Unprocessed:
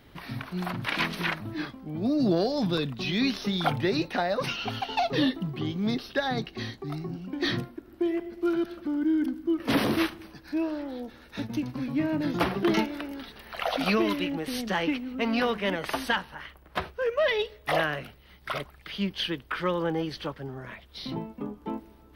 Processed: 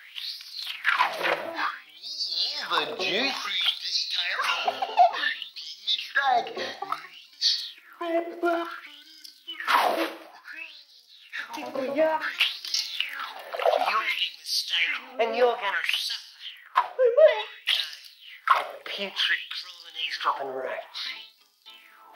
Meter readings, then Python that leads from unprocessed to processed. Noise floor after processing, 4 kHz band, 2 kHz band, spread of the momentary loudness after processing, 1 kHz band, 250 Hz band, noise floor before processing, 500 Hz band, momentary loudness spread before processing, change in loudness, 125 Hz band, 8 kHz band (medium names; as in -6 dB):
-54 dBFS, +7.5 dB, +4.5 dB, 15 LU, +6.0 dB, -12.5 dB, -54 dBFS, +3.0 dB, 12 LU, +3.0 dB, under -20 dB, +7.0 dB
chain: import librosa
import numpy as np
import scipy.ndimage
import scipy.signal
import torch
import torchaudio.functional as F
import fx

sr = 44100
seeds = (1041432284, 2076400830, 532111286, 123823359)

y = fx.rev_gated(x, sr, seeds[0], gate_ms=230, shape='falling', drr_db=9.5)
y = fx.filter_lfo_highpass(y, sr, shape='sine', hz=0.57, low_hz=520.0, high_hz=5000.0, q=5.8)
y = fx.rider(y, sr, range_db=5, speed_s=0.5)